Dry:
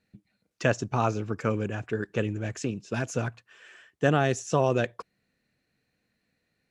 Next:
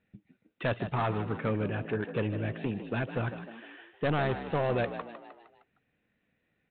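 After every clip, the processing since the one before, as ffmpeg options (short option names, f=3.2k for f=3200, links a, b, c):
-filter_complex "[0:a]aresample=8000,asoftclip=type=tanh:threshold=-23dB,aresample=44100,asplit=6[a][b][c][d][e][f];[b]adelay=154,afreqshift=56,volume=-11dB[g];[c]adelay=308,afreqshift=112,volume=-16.8dB[h];[d]adelay=462,afreqshift=168,volume=-22.7dB[i];[e]adelay=616,afreqshift=224,volume=-28.5dB[j];[f]adelay=770,afreqshift=280,volume=-34.4dB[k];[a][g][h][i][j][k]amix=inputs=6:normalize=0"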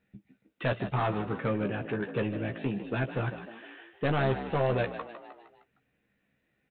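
-filter_complex "[0:a]asplit=2[a][b];[b]adelay=15,volume=-6dB[c];[a][c]amix=inputs=2:normalize=0"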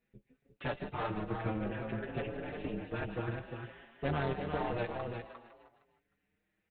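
-filter_complex "[0:a]tremolo=f=230:d=0.919,aecho=1:1:353:0.473,asplit=2[a][b];[b]adelay=5.7,afreqshift=0.57[c];[a][c]amix=inputs=2:normalize=1"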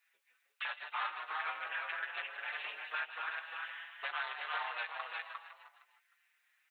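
-af "highpass=f=1.1k:w=0.5412,highpass=f=1.1k:w=1.3066,alimiter=level_in=13.5dB:limit=-24dB:level=0:latency=1:release=409,volume=-13.5dB,volume=10.5dB"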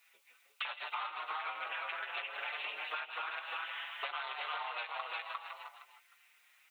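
-af "equalizer=f=1.7k:w=4.5:g=-11,acompressor=threshold=-48dB:ratio=6,volume=11dB"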